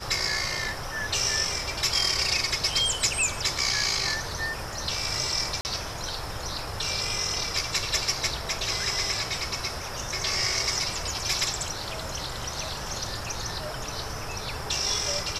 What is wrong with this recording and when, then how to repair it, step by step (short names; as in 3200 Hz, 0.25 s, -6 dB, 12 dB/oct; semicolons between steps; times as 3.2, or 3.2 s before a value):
5.61–5.65 gap 39 ms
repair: interpolate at 5.61, 39 ms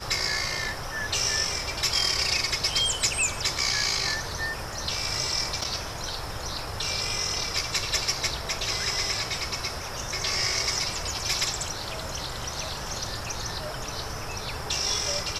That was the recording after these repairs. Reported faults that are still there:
none